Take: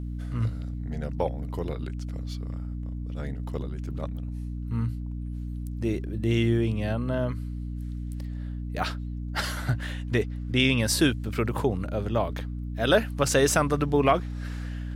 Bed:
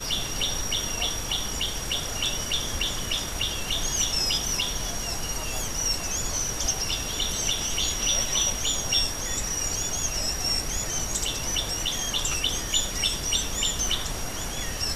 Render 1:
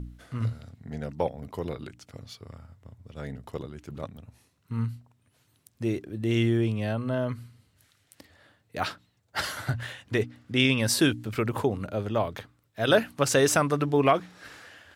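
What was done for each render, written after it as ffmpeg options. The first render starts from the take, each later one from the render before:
-af "bandreject=f=60:t=h:w=4,bandreject=f=120:t=h:w=4,bandreject=f=180:t=h:w=4,bandreject=f=240:t=h:w=4,bandreject=f=300:t=h:w=4"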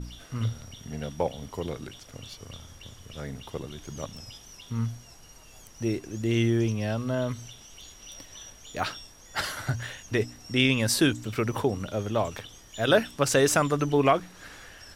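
-filter_complex "[1:a]volume=-21dB[a];[0:a][a]amix=inputs=2:normalize=0"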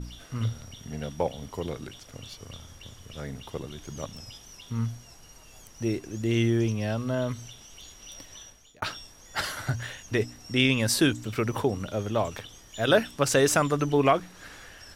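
-filter_complex "[0:a]asplit=2[a][b];[a]atrim=end=8.82,asetpts=PTS-STARTPTS,afade=t=out:st=8.33:d=0.49[c];[b]atrim=start=8.82,asetpts=PTS-STARTPTS,afade=t=in:d=0.004:c=hsin[d];[c][d]concat=n=2:v=0:a=1"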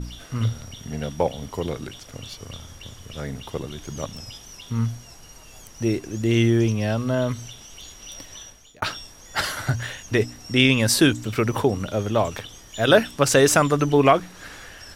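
-af "volume=5.5dB"

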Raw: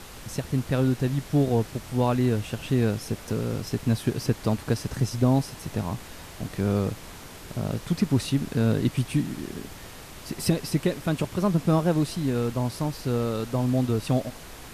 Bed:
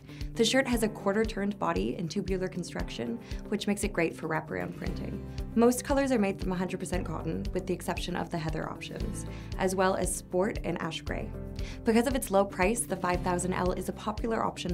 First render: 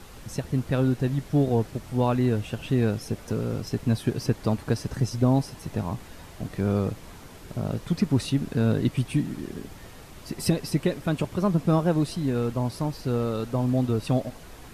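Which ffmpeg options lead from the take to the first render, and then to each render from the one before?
-af "afftdn=nr=6:nf=-43"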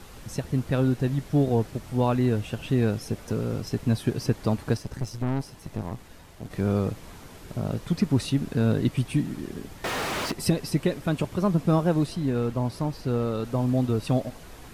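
-filter_complex "[0:a]asettb=1/sr,asplit=3[a][b][c];[a]atrim=end=4.774[d];[b]atrim=start=4.77:end=6.51,asetpts=PTS-STARTPTS,afade=t=in:d=0.004:c=qsin,afade=t=out:st=1.736:d=0.004:c=qsin,aeval=exprs='(tanh(14.1*val(0)+0.8)-tanh(0.8))/14.1':c=same[e];[c]atrim=start=6.506[f];[d][e]acrossfade=d=0.004:c1=hsin:c2=qsin[g];[g][f]acrossfade=d=0.004:c1=qsin:c2=hsin,asettb=1/sr,asplit=3[h][i][j];[h]atrim=end=9.844[k];[i]atrim=start=9.84:end=10.32,asetpts=PTS-STARTPTS,afade=t=in:d=0.004:c=qsin,afade=t=out:st=0.476:d=0.004:c=qsin,asplit=2[l][m];[m]highpass=f=720:p=1,volume=40dB,asoftclip=type=tanh:threshold=-18.5dB[n];[l][n]amix=inputs=2:normalize=0,lowpass=f=2.3k:p=1,volume=-6dB[o];[j]atrim=start=10.316[p];[k][o]acrossfade=d=0.004:c1=hsin:c2=qsin[q];[q][p]acrossfade=d=0.004:c1=qsin:c2=hsin,asettb=1/sr,asplit=3[r][s][t];[r]atrim=end=12.064[u];[s]atrim=start=12.06:end=13.45,asetpts=PTS-STARTPTS,afade=t=in:d=0.004:c=qsin,afade=t=out:st=1.386:d=0.004:c=qsin,highshelf=f=4.4k:g=-4.5[v];[t]atrim=start=13.446[w];[u][v]acrossfade=d=0.004:c1=hsin:c2=qsin[x];[x][w]acrossfade=d=0.004:c1=qsin:c2=hsin"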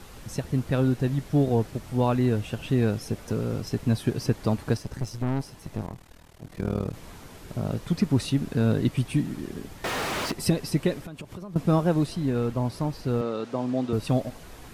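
-filter_complex "[0:a]asettb=1/sr,asplit=3[a][b][c];[a]atrim=end=5.864[d];[b]atrim=start=5.86:end=6.94,asetpts=PTS-STARTPTS,afade=t=in:d=0.004:c=qsin,afade=t=out:st=1.076:d=0.004:c=qsin,tremolo=f=39:d=0.919[e];[c]atrim=start=6.936[f];[d][e]acrossfade=d=0.004:c1=hsin:c2=qsin[g];[g][f]acrossfade=d=0.004:c1=qsin:c2=hsin,asettb=1/sr,asplit=3[h][i][j];[h]atrim=end=11.014[k];[i]atrim=start=11.01:end=11.56,asetpts=PTS-STARTPTS,afade=t=in:d=0.004:c=qsin,afade=t=out:st=0.546:d=0.004:c=qsin,acompressor=threshold=-35dB:ratio=8:attack=3.2:release=140:knee=1:detection=peak[l];[j]atrim=start=11.556[m];[k][l]acrossfade=d=0.004:c1=hsin:c2=qsin[n];[n][m]acrossfade=d=0.004:c1=qsin:c2=hsin,asettb=1/sr,asplit=3[o][p][q];[o]atrim=end=13.214[r];[p]atrim=start=13.21:end=13.93,asetpts=PTS-STARTPTS,afade=t=in:d=0.004:c=qsin,afade=t=out:st=0.716:d=0.004:c=qsin,highpass=230,lowpass=6.5k[s];[q]atrim=start=13.926[t];[r][s]acrossfade=d=0.004:c1=hsin:c2=qsin[u];[u][t]acrossfade=d=0.004:c1=qsin:c2=hsin"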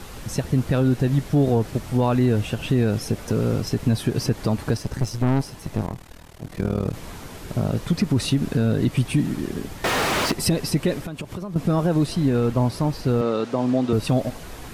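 -af "acontrast=88,alimiter=limit=-11dB:level=0:latency=1:release=83"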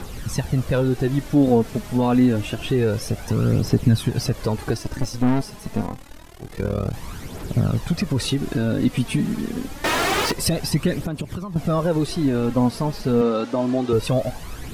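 -af "aphaser=in_gain=1:out_gain=1:delay=4.9:decay=0.5:speed=0.27:type=triangular"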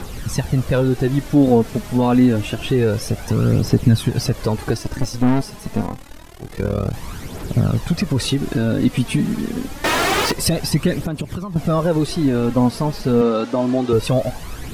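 -af "volume=3dB"

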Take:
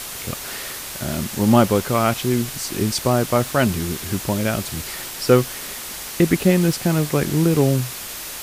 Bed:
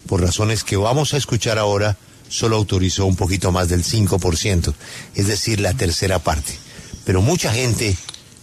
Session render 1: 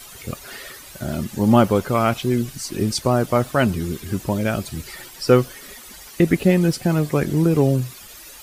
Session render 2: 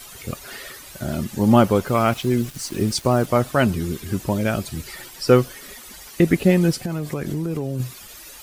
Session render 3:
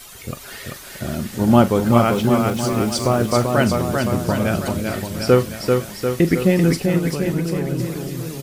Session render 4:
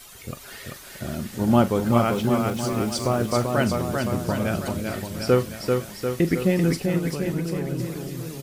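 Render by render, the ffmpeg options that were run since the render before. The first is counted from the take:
-af "afftdn=nr=13:nf=-32"
-filter_complex "[0:a]asettb=1/sr,asplit=3[a][b][c];[a]atrim=end=1.874[d];[b]atrim=start=1.87:end=3.26,asetpts=PTS-STARTPTS,afade=t=in:d=0.004:c=qsin,afade=t=out:st=1.386:d=0.004:c=qsin,aeval=exprs='val(0)*gte(abs(val(0)),0.0141)':c=same[e];[c]atrim=start=3.256[f];[d][e]acrossfade=d=0.004:c1=hsin:c2=qsin[g];[g][f]acrossfade=d=0.004:c1=qsin:c2=hsin,asettb=1/sr,asplit=3[h][i][j];[h]atrim=end=6.804[k];[i]atrim=start=6.8:end=7.8,asetpts=PTS-STARTPTS,afade=t=in:d=0.004:c=qsin,afade=t=out:st=0.996:d=0.004:c=qsin,acompressor=threshold=-21dB:ratio=12:attack=3.2:release=140:knee=1:detection=peak[l];[j]atrim=start=7.796[m];[k][l]acrossfade=d=0.004:c1=hsin:c2=qsin[n];[n][m]acrossfade=d=0.004:c1=qsin:c2=hsin"
-filter_complex "[0:a]asplit=2[a][b];[b]adelay=42,volume=-13.5dB[c];[a][c]amix=inputs=2:normalize=0,aecho=1:1:390|741|1057|1341|1597:0.631|0.398|0.251|0.158|0.1"
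-af "volume=-5dB"

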